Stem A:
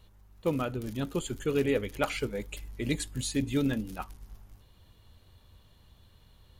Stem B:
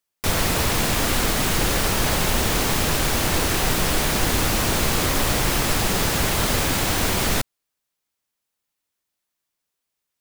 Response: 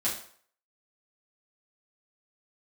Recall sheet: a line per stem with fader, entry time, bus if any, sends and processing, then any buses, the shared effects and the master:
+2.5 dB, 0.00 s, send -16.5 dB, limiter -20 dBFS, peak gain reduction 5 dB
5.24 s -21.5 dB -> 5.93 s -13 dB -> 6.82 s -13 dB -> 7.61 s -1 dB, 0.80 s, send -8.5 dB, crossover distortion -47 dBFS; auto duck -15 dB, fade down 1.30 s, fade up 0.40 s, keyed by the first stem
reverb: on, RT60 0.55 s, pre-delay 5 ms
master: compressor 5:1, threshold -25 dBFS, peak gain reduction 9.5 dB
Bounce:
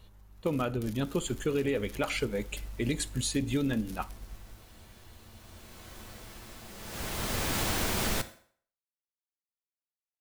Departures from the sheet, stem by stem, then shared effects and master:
stem B -21.5 dB -> -28.0 dB; reverb return -7.5 dB

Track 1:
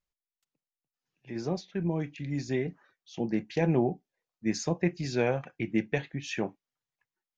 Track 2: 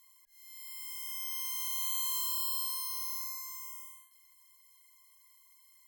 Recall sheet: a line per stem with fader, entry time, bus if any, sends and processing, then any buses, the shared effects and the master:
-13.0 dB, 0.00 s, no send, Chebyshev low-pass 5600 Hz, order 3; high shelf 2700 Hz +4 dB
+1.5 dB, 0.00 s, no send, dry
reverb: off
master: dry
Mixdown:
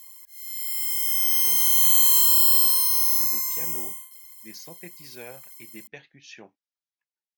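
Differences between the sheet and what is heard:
stem 2 +1.5 dB -> +7.5 dB; master: extra tilt +2.5 dB/oct

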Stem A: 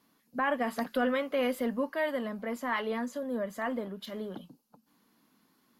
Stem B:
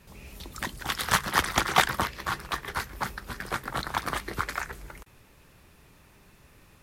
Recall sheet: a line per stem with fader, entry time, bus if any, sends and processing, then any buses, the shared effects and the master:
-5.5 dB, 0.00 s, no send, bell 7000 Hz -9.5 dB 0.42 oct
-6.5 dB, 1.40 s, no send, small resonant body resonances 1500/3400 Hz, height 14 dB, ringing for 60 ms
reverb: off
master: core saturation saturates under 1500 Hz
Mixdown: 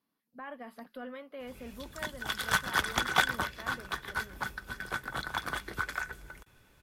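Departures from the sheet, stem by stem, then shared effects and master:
stem A -5.5 dB -> -14.5 dB; master: missing core saturation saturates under 1500 Hz

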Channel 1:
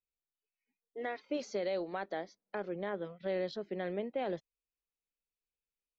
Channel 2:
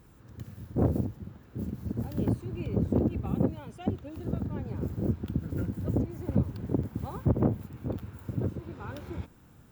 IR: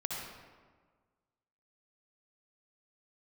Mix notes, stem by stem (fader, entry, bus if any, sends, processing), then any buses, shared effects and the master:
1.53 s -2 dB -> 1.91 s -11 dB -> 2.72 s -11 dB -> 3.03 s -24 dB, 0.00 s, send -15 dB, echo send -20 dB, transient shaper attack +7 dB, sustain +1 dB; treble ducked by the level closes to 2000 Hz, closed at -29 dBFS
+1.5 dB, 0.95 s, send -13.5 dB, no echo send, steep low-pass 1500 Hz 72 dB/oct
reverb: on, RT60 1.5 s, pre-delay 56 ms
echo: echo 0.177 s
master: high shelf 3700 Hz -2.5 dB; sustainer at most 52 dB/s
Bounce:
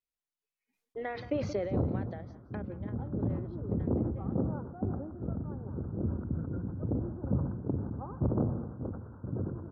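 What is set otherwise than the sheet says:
stem 1: send off; stem 2 +1.5 dB -> -6.5 dB

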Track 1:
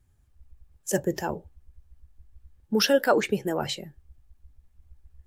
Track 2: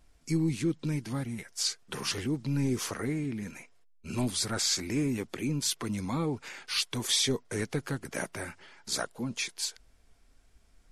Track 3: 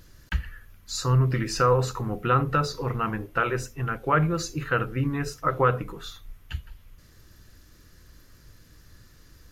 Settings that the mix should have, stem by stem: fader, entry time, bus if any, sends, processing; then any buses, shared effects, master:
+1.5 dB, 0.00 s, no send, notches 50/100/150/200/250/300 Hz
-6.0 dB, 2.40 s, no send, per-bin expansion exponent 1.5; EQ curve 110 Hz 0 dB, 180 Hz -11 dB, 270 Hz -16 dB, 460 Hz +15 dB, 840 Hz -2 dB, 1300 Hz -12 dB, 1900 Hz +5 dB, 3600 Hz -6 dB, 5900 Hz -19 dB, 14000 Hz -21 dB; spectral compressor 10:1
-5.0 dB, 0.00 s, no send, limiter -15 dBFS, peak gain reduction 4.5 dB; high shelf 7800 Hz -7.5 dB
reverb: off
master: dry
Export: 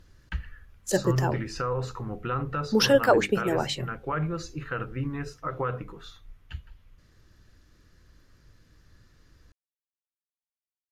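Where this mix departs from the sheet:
stem 2: muted; master: extra high shelf 9700 Hz -9 dB

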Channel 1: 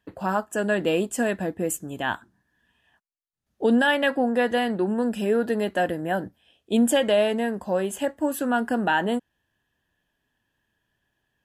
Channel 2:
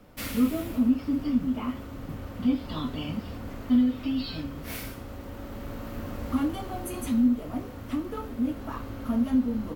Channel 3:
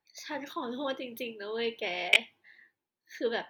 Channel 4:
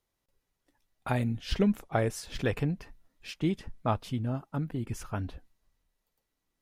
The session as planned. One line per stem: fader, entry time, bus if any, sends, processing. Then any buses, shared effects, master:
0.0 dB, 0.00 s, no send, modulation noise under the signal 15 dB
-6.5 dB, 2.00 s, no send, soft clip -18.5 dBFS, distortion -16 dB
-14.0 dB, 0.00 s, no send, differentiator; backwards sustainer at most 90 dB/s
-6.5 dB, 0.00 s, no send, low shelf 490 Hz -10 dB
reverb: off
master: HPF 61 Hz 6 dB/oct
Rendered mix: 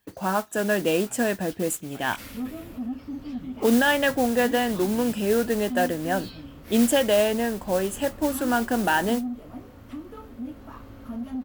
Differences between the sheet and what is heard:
stem 4 -6.5 dB -> -16.0 dB; master: missing HPF 61 Hz 6 dB/oct

